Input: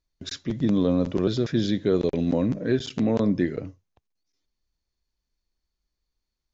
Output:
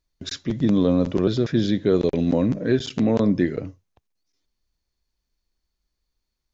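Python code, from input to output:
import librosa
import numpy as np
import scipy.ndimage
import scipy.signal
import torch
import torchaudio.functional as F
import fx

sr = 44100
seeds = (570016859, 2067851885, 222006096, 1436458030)

y = fx.high_shelf(x, sr, hz=4600.0, db=-5.0, at=(1.2, 1.89))
y = y * 10.0 ** (3.0 / 20.0)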